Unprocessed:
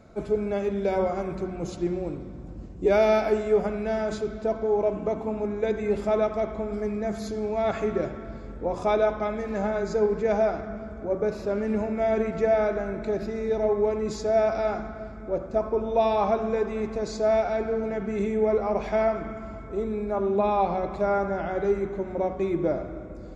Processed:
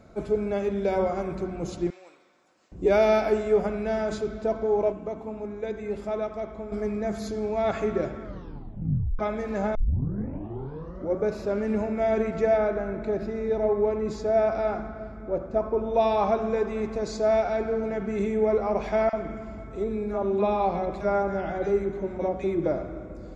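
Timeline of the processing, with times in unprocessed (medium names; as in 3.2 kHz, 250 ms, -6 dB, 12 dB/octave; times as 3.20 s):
1.90–2.72 s: Bessel high-pass 1.7 kHz
4.92–6.72 s: gain -6 dB
8.22 s: tape stop 0.97 s
9.75 s: tape start 1.44 s
12.57–15.94 s: treble shelf 3.8 kHz -9.5 dB
19.09–22.66 s: bands offset in time highs, lows 40 ms, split 1.1 kHz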